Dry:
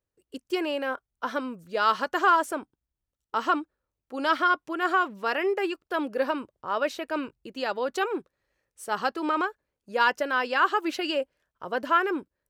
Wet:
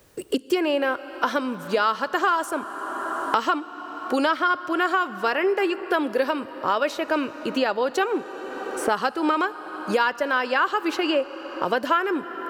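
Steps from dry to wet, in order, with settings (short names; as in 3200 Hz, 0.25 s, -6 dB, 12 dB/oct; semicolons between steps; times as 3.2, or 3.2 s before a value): reverb RT60 3.5 s, pre-delay 23 ms, DRR 16.5 dB; three-band squash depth 100%; gain +3 dB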